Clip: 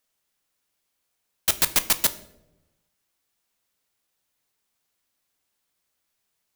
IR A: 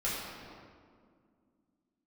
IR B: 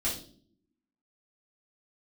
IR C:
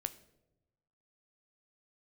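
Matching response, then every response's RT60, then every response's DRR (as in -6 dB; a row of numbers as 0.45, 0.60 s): C; 2.1, 0.50, 0.95 s; -9.0, -8.0, 11.0 dB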